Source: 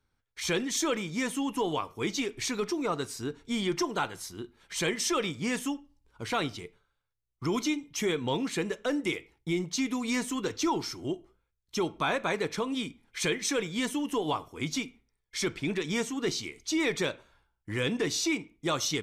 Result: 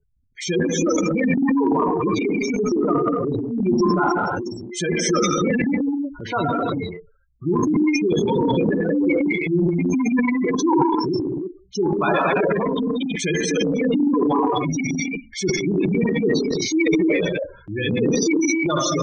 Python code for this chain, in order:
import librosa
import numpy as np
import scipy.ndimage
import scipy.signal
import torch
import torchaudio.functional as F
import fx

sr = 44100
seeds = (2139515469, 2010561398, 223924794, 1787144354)

y = fx.rev_gated(x, sr, seeds[0], gate_ms=350, shape='flat', drr_db=-3.5)
y = fx.spec_gate(y, sr, threshold_db=-10, keep='strong')
y = fx.transient(y, sr, attack_db=-1, sustain_db=11)
y = y * librosa.db_to_amplitude(7.0)